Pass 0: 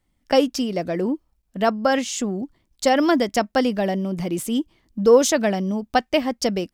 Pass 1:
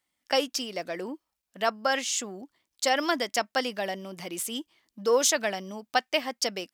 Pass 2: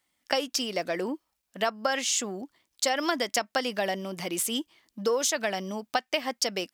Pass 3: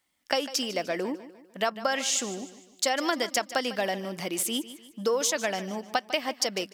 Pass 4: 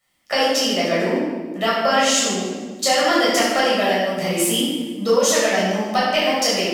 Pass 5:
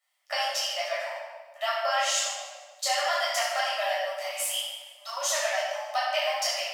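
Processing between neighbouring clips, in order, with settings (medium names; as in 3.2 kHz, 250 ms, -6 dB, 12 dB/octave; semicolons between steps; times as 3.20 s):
high-pass 1.4 kHz 6 dB/octave
compression 10:1, threshold -27 dBFS, peak gain reduction 10 dB; trim +4.5 dB
feedback delay 150 ms, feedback 43%, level -15 dB
simulated room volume 870 m³, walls mixed, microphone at 6.4 m; trim -1.5 dB
brick-wall FIR high-pass 550 Hz; trim -8 dB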